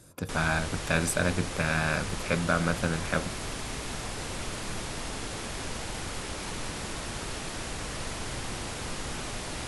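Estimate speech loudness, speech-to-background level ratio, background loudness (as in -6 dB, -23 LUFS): -29.0 LUFS, 6.5 dB, -35.5 LUFS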